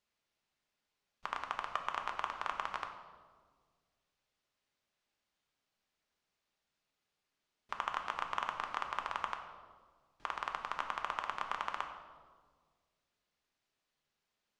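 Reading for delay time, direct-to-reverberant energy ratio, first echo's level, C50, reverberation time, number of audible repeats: no echo, 4.0 dB, no echo, 7.5 dB, 1.7 s, no echo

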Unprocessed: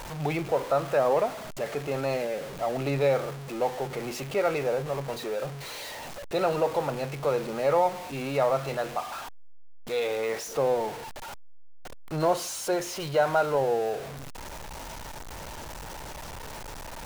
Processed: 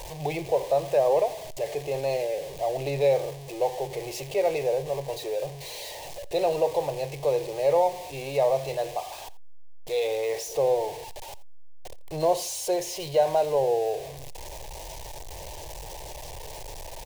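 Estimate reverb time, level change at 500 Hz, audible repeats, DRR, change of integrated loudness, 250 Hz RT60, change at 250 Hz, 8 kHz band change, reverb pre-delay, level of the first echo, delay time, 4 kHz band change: no reverb, +2.0 dB, 1, no reverb, +1.5 dB, no reverb, -4.0 dB, +2.0 dB, no reverb, -20.0 dB, 85 ms, +1.0 dB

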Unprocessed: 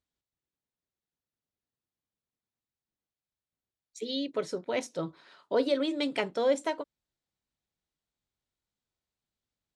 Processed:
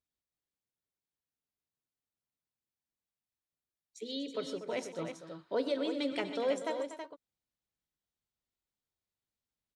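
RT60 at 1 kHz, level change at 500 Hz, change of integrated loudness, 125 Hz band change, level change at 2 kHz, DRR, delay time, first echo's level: no reverb, -5.0 dB, -5.0 dB, -5.0 dB, -5.0 dB, no reverb, 95 ms, -18.0 dB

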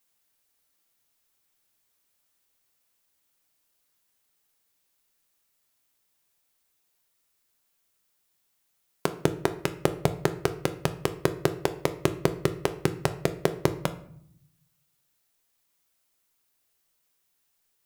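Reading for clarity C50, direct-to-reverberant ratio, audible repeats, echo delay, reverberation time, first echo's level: 14.0 dB, 9.0 dB, no echo, no echo, 0.65 s, no echo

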